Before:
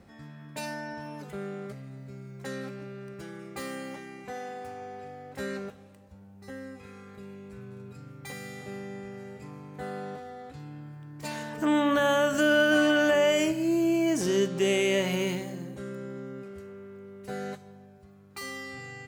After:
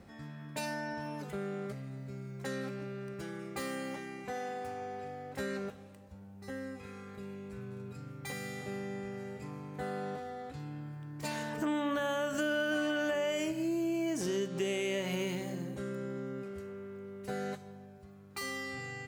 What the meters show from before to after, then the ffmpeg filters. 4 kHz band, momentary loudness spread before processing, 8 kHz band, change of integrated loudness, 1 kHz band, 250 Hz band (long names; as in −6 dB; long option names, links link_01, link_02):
−8.0 dB, 22 LU, −6.0 dB, −9.0 dB, −5.5 dB, −7.0 dB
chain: -af "acompressor=threshold=-33dB:ratio=3"